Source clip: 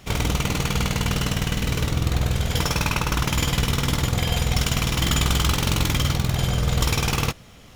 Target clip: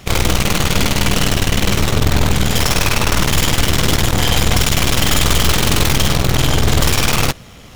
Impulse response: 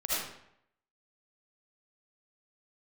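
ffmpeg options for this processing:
-af "aeval=exprs='0.447*(cos(1*acos(clip(val(0)/0.447,-1,1)))-cos(1*PI/2))+0.0316*(cos(5*acos(clip(val(0)/0.447,-1,1)))-cos(5*PI/2))+0.141*(cos(8*acos(clip(val(0)/0.447,-1,1)))-cos(8*PI/2))':c=same,volume=12dB,asoftclip=hard,volume=-12dB,volume=5.5dB"

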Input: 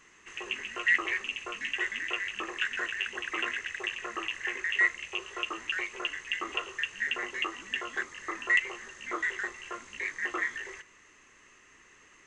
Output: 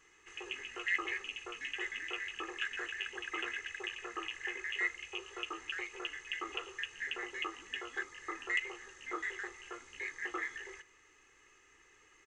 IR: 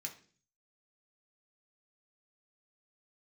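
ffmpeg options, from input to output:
-af "aecho=1:1:2.4:0.61,volume=-7.5dB"

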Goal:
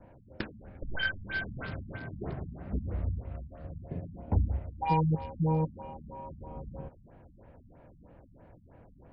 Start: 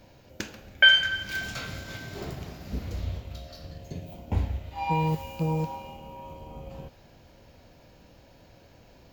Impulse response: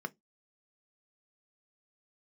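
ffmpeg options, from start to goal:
-filter_complex "[0:a]acrossover=split=400|1300|1900[a][b][c][d];[d]acrusher=bits=4:dc=4:mix=0:aa=0.000001[e];[a][b][c][e]amix=inputs=4:normalize=0,afftfilt=real='re*lt(b*sr/1024,240*pow(5400/240,0.5+0.5*sin(2*PI*3.1*pts/sr)))':imag='im*lt(b*sr/1024,240*pow(5400/240,0.5+0.5*sin(2*PI*3.1*pts/sr)))':win_size=1024:overlap=0.75"

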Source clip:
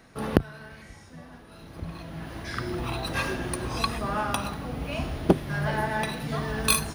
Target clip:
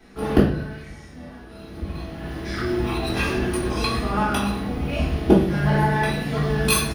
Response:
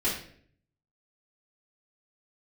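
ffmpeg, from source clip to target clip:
-filter_complex "[0:a]aecho=1:1:226:0.0708[a];[1:a]atrim=start_sample=2205[b];[a][b]afir=irnorm=-1:irlink=0,volume=-4.5dB"

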